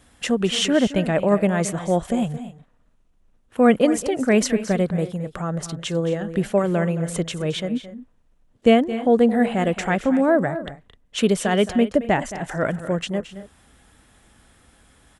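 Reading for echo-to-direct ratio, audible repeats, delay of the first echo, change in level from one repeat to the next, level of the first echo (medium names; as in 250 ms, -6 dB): -12.5 dB, 2, 220 ms, no regular repeats, -14.0 dB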